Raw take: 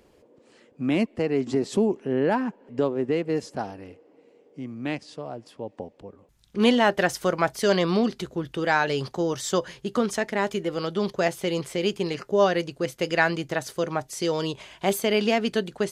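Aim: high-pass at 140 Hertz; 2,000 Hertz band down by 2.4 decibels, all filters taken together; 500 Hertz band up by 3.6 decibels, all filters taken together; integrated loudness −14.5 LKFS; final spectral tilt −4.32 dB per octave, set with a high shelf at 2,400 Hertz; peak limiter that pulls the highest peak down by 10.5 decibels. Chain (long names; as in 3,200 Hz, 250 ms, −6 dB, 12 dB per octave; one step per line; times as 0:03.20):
high-pass filter 140 Hz
parametric band 500 Hz +4.5 dB
parametric band 2,000 Hz −6 dB
high-shelf EQ 2,400 Hz +5.5 dB
level +12 dB
brickwall limiter −3 dBFS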